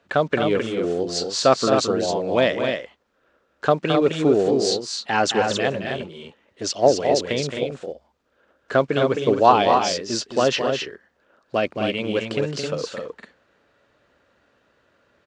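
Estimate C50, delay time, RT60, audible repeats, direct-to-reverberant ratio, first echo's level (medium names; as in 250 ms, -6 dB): no reverb, 217 ms, no reverb, 2, no reverb, -8.0 dB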